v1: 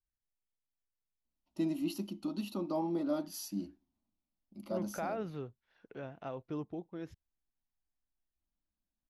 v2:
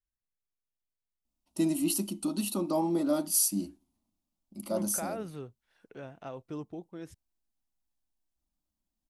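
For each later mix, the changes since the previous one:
first voice +5.5 dB
master: remove moving average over 5 samples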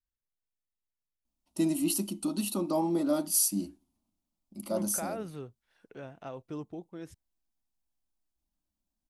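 nothing changed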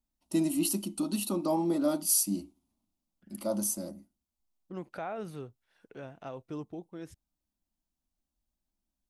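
first voice: entry −1.25 s

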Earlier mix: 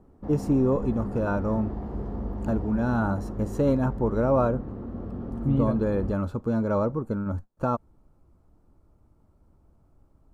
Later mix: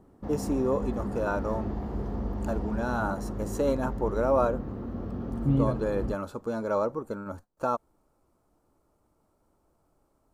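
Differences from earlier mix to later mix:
first voice: add bass and treble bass −15 dB, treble +7 dB
background: add high-shelf EQ 2,300 Hz +10 dB

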